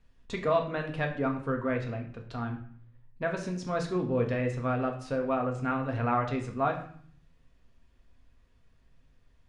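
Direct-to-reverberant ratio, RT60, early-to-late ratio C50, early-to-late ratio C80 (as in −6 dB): 1.5 dB, 0.55 s, 9.0 dB, 12.0 dB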